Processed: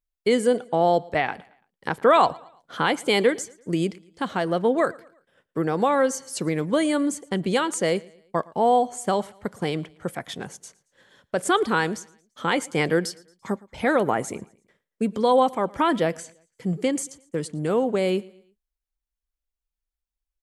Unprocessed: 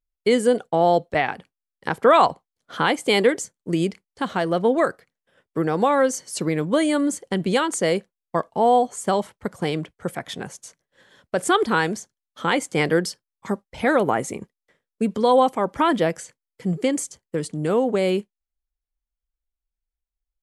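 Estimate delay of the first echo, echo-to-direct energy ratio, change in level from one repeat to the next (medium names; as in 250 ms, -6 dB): 113 ms, -22.5 dB, -7.5 dB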